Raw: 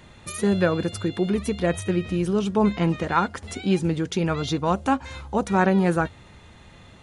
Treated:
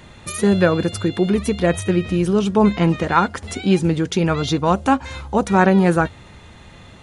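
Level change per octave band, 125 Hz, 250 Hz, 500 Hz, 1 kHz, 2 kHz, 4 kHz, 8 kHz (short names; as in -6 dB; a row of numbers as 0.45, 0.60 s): +5.5, +5.5, +5.5, +5.5, +5.5, +5.5, +5.5 dB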